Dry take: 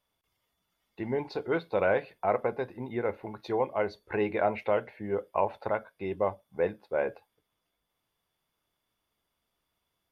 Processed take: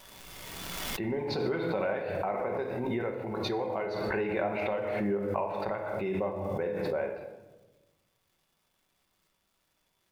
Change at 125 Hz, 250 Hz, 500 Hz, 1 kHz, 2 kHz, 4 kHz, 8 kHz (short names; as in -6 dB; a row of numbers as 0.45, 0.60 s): +3.0 dB, +2.5 dB, -1.5 dB, -2.5 dB, -0.5 dB, +9.0 dB, n/a